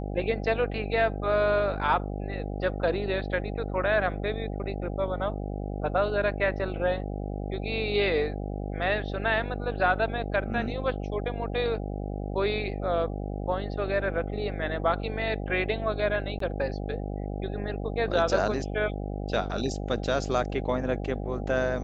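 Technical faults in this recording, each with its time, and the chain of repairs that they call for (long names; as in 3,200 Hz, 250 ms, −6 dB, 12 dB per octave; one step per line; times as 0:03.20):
mains buzz 50 Hz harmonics 16 −33 dBFS
0:16.39–0:16.40: drop-out 13 ms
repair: hum removal 50 Hz, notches 16
repair the gap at 0:16.39, 13 ms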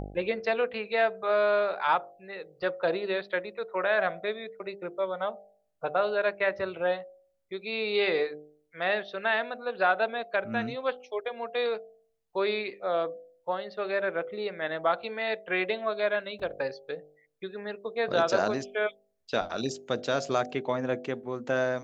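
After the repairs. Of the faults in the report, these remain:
none of them is left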